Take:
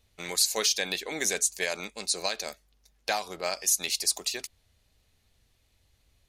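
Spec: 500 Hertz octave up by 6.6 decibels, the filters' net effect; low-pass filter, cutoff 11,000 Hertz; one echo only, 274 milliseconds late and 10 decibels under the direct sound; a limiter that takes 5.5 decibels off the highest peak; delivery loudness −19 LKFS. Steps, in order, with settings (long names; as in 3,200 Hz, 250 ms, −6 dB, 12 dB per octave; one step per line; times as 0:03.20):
low-pass filter 11,000 Hz
parametric band 500 Hz +8 dB
brickwall limiter −16.5 dBFS
single-tap delay 274 ms −10 dB
level +10 dB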